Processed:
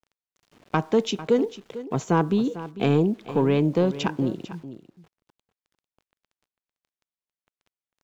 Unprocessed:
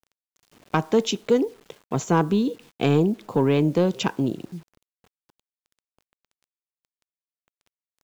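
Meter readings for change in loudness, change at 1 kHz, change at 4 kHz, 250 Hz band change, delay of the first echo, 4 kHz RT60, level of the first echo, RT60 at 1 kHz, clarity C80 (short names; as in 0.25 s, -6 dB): -1.0 dB, -1.0 dB, -3.0 dB, -1.0 dB, 0.448 s, none, -14.5 dB, none, none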